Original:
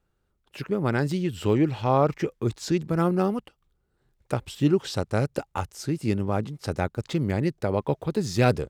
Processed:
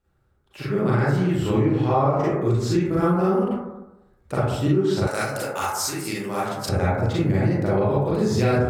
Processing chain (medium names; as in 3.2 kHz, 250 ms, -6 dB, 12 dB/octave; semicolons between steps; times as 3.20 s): reverberation RT60 0.95 s, pre-delay 32 ms, DRR -9.5 dB; compression, threshold -13 dBFS, peak gain reduction 9 dB; 5.07–6.69 s: tilt EQ +4.5 dB/octave; trim -3 dB